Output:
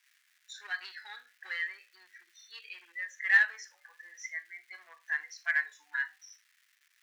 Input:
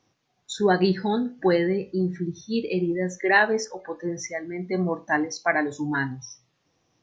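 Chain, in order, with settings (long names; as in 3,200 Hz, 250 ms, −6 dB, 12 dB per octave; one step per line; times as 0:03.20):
harmonic and percussive parts rebalanced percussive −9 dB
surface crackle 570 per second −50 dBFS
in parallel at −3.5 dB: hard clipping −21 dBFS, distortion −11 dB
on the sum: four-pole ladder high-pass 1,600 Hz, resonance 60%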